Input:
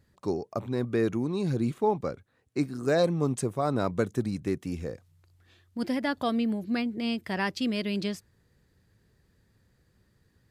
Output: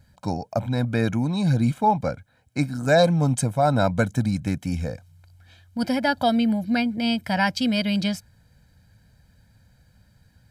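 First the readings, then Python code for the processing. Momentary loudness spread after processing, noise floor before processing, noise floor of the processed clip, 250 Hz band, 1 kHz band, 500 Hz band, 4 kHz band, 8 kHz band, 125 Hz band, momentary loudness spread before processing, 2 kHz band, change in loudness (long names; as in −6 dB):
11 LU, −68 dBFS, −60 dBFS, +6.0 dB, +9.5 dB, +4.0 dB, +9.0 dB, +8.0 dB, +9.5 dB, 10 LU, +8.5 dB, +6.5 dB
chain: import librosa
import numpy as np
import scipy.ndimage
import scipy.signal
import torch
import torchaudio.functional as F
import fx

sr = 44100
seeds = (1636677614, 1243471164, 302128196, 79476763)

y = x + 0.87 * np.pad(x, (int(1.3 * sr / 1000.0), 0))[:len(x)]
y = y * 10.0 ** (5.5 / 20.0)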